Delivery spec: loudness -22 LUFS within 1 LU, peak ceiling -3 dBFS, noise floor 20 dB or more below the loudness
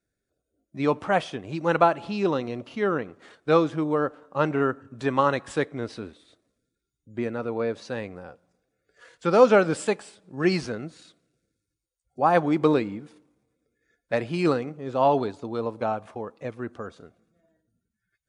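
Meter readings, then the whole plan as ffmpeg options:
loudness -25.5 LUFS; peak level -4.5 dBFS; loudness target -22.0 LUFS
-> -af "volume=1.5,alimiter=limit=0.708:level=0:latency=1"

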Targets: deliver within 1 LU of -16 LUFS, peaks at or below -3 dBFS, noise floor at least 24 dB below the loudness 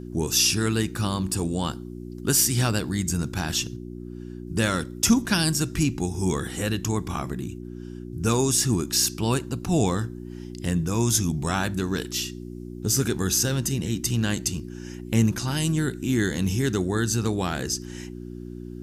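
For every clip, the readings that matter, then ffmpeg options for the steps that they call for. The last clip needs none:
hum 60 Hz; highest harmonic 360 Hz; hum level -34 dBFS; loudness -24.5 LUFS; peak level -6.5 dBFS; loudness target -16.0 LUFS
-> -af "bandreject=f=60:t=h:w=4,bandreject=f=120:t=h:w=4,bandreject=f=180:t=h:w=4,bandreject=f=240:t=h:w=4,bandreject=f=300:t=h:w=4,bandreject=f=360:t=h:w=4"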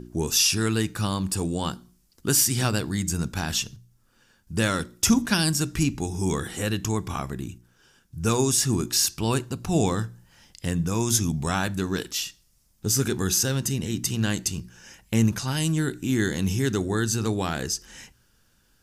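hum not found; loudness -25.0 LUFS; peak level -7.0 dBFS; loudness target -16.0 LUFS
-> -af "volume=2.82,alimiter=limit=0.708:level=0:latency=1"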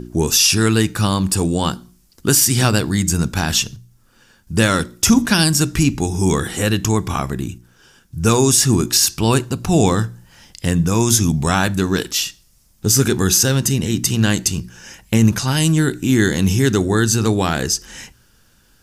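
loudness -16.5 LUFS; peak level -3.0 dBFS; noise floor -55 dBFS

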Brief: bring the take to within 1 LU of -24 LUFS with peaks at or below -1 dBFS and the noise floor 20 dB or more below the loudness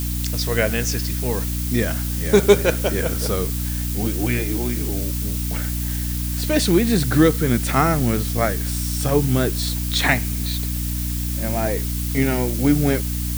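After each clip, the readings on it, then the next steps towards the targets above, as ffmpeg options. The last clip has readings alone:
hum 60 Hz; highest harmonic 300 Hz; hum level -22 dBFS; noise floor -24 dBFS; noise floor target -41 dBFS; loudness -20.5 LUFS; peak level -1.0 dBFS; loudness target -24.0 LUFS
-> -af "bandreject=f=60:t=h:w=6,bandreject=f=120:t=h:w=6,bandreject=f=180:t=h:w=6,bandreject=f=240:t=h:w=6,bandreject=f=300:t=h:w=6"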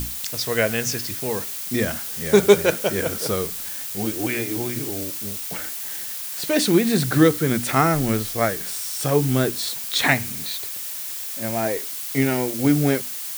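hum not found; noise floor -31 dBFS; noise floor target -42 dBFS
-> -af "afftdn=nr=11:nf=-31"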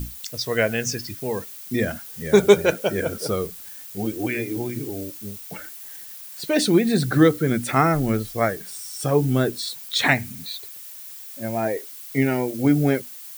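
noise floor -40 dBFS; noise floor target -43 dBFS
-> -af "afftdn=nr=6:nf=-40"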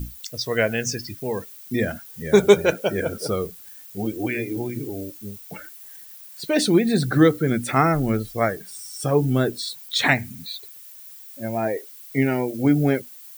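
noise floor -43 dBFS; loudness -22.5 LUFS; peak level -2.0 dBFS; loudness target -24.0 LUFS
-> -af "volume=0.841"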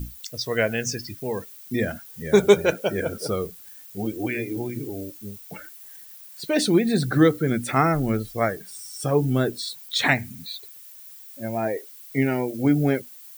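loudness -24.0 LUFS; peak level -3.5 dBFS; noise floor -45 dBFS

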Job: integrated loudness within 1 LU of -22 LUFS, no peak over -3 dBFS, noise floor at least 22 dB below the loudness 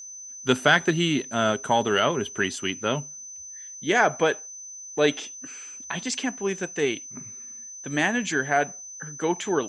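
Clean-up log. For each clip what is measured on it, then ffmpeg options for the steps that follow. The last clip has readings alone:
steady tone 6.1 kHz; tone level -38 dBFS; loudness -25.0 LUFS; peak level -4.5 dBFS; loudness target -22.0 LUFS
-> -af "bandreject=f=6100:w=30"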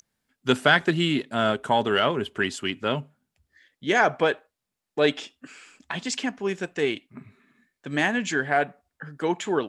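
steady tone not found; loudness -25.0 LUFS; peak level -4.5 dBFS; loudness target -22.0 LUFS
-> -af "volume=1.41,alimiter=limit=0.708:level=0:latency=1"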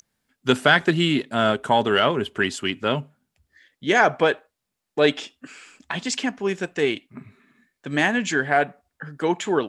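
loudness -22.0 LUFS; peak level -3.0 dBFS; noise floor -81 dBFS

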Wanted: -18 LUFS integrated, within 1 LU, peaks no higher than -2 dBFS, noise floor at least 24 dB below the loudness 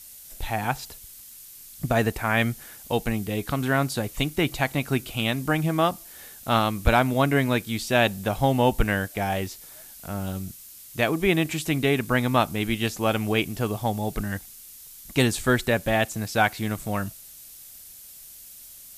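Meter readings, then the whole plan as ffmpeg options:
noise floor -45 dBFS; noise floor target -49 dBFS; loudness -25.0 LUFS; peak level -7.5 dBFS; loudness target -18.0 LUFS
-> -af "afftdn=nr=6:nf=-45"
-af "volume=2.24,alimiter=limit=0.794:level=0:latency=1"

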